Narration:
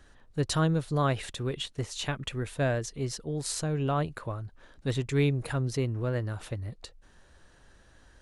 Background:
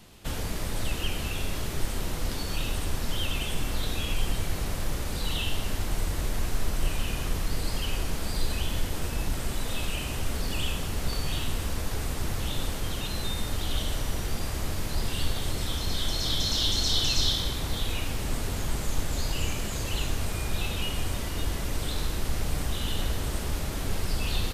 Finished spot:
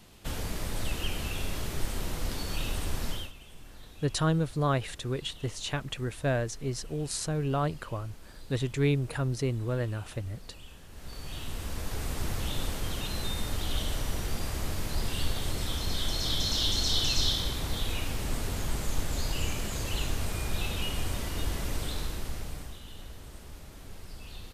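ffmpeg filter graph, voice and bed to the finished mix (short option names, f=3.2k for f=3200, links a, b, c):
-filter_complex "[0:a]adelay=3650,volume=-0.5dB[a];[1:a]volume=15.5dB,afade=t=out:st=3.07:d=0.25:silence=0.133352,afade=t=in:st=10.88:d=1.31:silence=0.125893,afade=t=out:st=21.71:d=1.1:silence=0.199526[b];[a][b]amix=inputs=2:normalize=0"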